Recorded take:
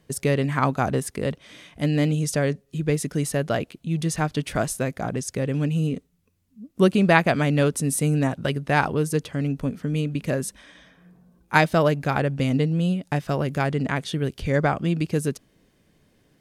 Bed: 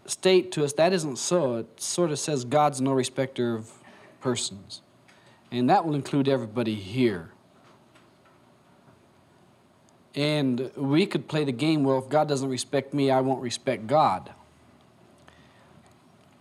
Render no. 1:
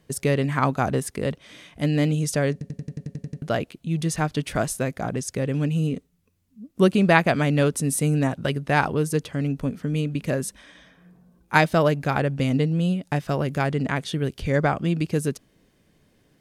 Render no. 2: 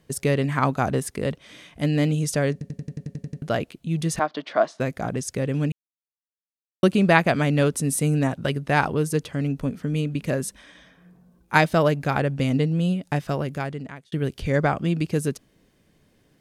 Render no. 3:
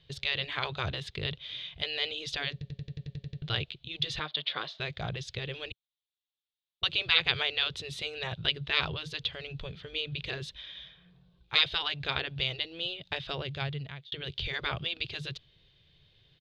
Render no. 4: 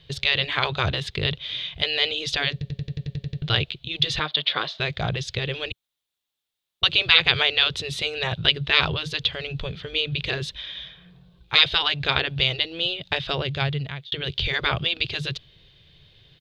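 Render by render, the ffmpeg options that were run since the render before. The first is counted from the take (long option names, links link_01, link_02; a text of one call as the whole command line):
ffmpeg -i in.wav -filter_complex "[0:a]asplit=11[link_01][link_02][link_03][link_04][link_05][link_06][link_07][link_08][link_09][link_10][link_11];[link_01]atrim=end=2.612[link_12];[link_02]atrim=start=2.518:end=2.612[link_13];[link_03]atrim=start=2.518:end=2.612[link_14];[link_04]atrim=start=2.518:end=2.612[link_15];[link_05]atrim=start=2.518:end=2.612[link_16];[link_06]atrim=start=2.518:end=2.612[link_17];[link_07]atrim=start=2.518:end=2.612[link_18];[link_08]atrim=start=2.518:end=2.612[link_19];[link_09]atrim=start=2.518:end=2.612[link_20];[link_10]atrim=start=2.518:end=2.612[link_21];[link_11]atrim=start=3.418[link_22];[link_12][link_13]acrossfade=duration=0.004:curve1=hsin:curve2=hsin[link_23];[link_23][link_14]acrossfade=duration=0.004:curve1=hsin:curve2=hsin[link_24];[link_24][link_15]acrossfade=duration=0.004:curve1=hsin:curve2=hsin[link_25];[link_25][link_16]acrossfade=duration=0.004:curve1=hsin:curve2=hsin[link_26];[link_26][link_17]acrossfade=duration=0.004:curve1=hsin:curve2=hsin[link_27];[link_27][link_18]acrossfade=duration=0.004:curve1=hsin:curve2=hsin[link_28];[link_28][link_19]acrossfade=duration=0.004:curve1=hsin:curve2=hsin[link_29];[link_29][link_20]acrossfade=duration=0.004:curve1=hsin:curve2=hsin[link_30];[link_30][link_21]acrossfade=duration=0.004:curve1=hsin:curve2=hsin[link_31];[link_31][link_22]acrossfade=duration=0.004:curve1=hsin:curve2=hsin" out.wav
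ffmpeg -i in.wav -filter_complex "[0:a]asettb=1/sr,asplit=3[link_01][link_02][link_03];[link_01]atrim=end=4.194[link_04];[link_02]atrim=start=4.19:end=4.8,asetpts=PTS-STARTPTS,afade=type=in:duration=0.004:curve=qsin,afade=type=out:start_time=0.606:duration=0.004:curve=qsin,highpass=frequency=260:width=0.5412,highpass=frequency=260:width=1.3066,equalizer=frequency=270:width_type=q:width=4:gain=-3,equalizer=frequency=430:width_type=q:width=4:gain=-5,equalizer=frequency=650:width_type=q:width=4:gain=8,equalizer=frequency=1100:width_type=q:width=4:gain=6,equalizer=frequency=2600:width_type=q:width=4:gain=-6,lowpass=frequency=4400:width=0.5412,lowpass=frequency=4400:width=1.3066[link_05];[link_03]atrim=start=4.796[link_06];[link_04][link_05]acrossfade=duration=0.004:curve1=hsin:curve2=qsin[link_07];[link_07][link_06]acrossfade=duration=0.004:curve1=qsin:curve2=hsin,asplit=4[link_08][link_09][link_10][link_11];[link_08]atrim=end=5.72,asetpts=PTS-STARTPTS,afade=type=out:start_time=5.716:duration=0.004:curve=hsin[link_12];[link_09]atrim=start=5.72:end=6.83,asetpts=PTS-STARTPTS,volume=0[link_13];[link_10]atrim=start=6.83:end=14.12,asetpts=PTS-STARTPTS,afade=type=in:duration=0.004:curve=hsin,afade=type=out:start_time=6.39:duration=0.9[link_14];[link_11]atrim=start=14.12,asetpts=PTS-STARTPTS,afade=type=in:duration=0.004:curve=hsin[link_15];[link_12][link_13][link_14][link_15]concat=n=4:v=0:a=1" out.wav
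ffmpeg -i in.wav -af "afftfilt=real='re*lt(hypot(re,im),0.355)':imag='im*lt(hypot(re,im),0.355)':win_size=1024:overlap=0.75,firequalizer=gain_entry='entry(140,0);entry(230,-23);entry(380,-9);entry(560,-10);entry(1200,-8);entry(1900,-4);entry(3600,13);entry(5500,-10);entry(9300,-30)':delay=0.05:min_phase=1" out.wav
ffmpeg -i in.wav -af "volume=9.5dB,alimiter=limit=-1dB:level=0:latency=1" out.wav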